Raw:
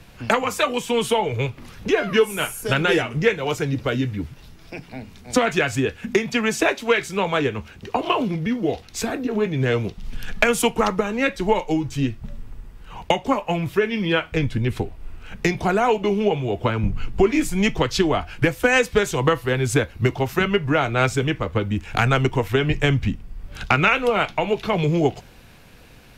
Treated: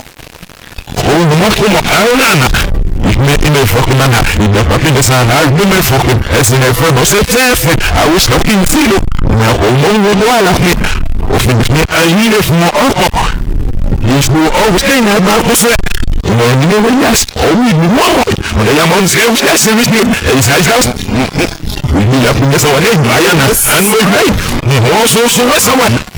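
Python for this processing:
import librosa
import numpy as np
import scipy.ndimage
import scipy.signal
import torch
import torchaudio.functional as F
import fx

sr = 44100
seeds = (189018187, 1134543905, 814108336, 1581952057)

y = x[::-1].copy()
y = fx.fuzz(y, sr, gain_db=42.0, gate_db=-44.0)
y = fx.noise_reduce_blind(y, sr, reduce_db=8)
y = y * librosa.db_to_amplitude(7.0)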